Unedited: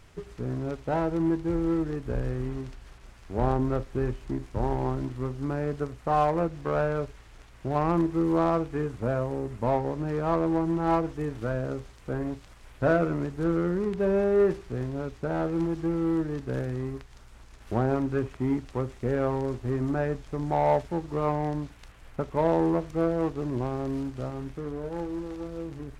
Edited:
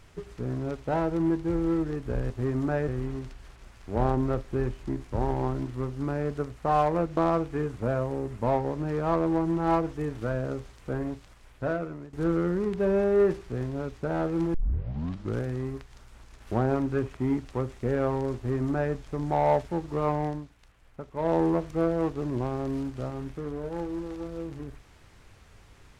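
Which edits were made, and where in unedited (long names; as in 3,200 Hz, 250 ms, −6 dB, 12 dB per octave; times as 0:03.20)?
0:06.59–0:08.37: remove
0:12.16–0:13.33: fade out, to −15 dB
0:15.74: tape start 0.90 s
0:19.56–0:20.14: duplicate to 0:02.30
0:21.44–0:22.56: duck −9.5 dB, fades 0.22 s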